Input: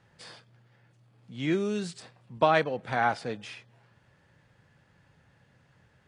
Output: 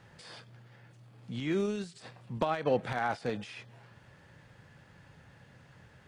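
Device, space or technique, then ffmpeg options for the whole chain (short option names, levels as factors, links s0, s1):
de-esser from a sidechain: -filter_complex "[0:a]asplit=2[s0][s1];[s1]highpass=6700,apad=whole_len=267881[s2];[s0][s2]sidechaincompress=threshold=0.00112:ratio=12:attack=0.61:release=65,volume=2"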